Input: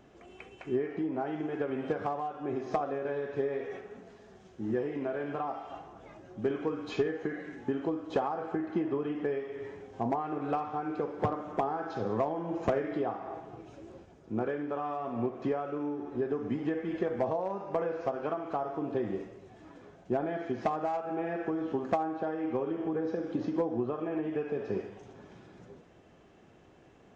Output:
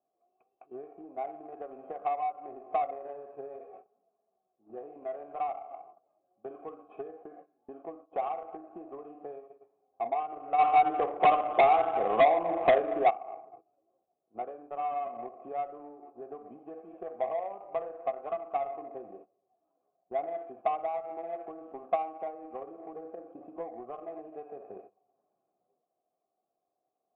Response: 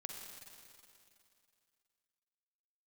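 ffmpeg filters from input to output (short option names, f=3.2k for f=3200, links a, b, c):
-filter_complex "[0:a]asplit=3[a][b][c];[a]bandpass=f=730:t=q:w=8,volume=0dB[d];[b]bandpass=f=1.09k:t=q:w=8,volume=-6dB[e];[c]bandpass=f=2.44k:t=q:w=8,volume=-9dB[f];[d][e][f]amix=inputs=3:normalize=0,lowshelf=f=180:g=-5.5,agate=range=-16dB:threshold=-55dB:ratio=16:detection=peak,asplit=3[g][h][i];[g]afade=t=out:st=10.58:d=0.02[j];[h]aeval=exprs='0.0794*sin(PI/2*2.51*val(0)/0.0794)':c=same,afade=t=in:st=10.58:d=0.02,afade=t=out:st=13.09:d=0.02[k];[i]afade=t=in:st=13.09:d=0.02[l];[j][k][l]amix=inputs=3:normalize=0,adynamicsmooth=sensitivity=2.5:basefreq=820,aresample=8000,aresample=44100,volume=7dB"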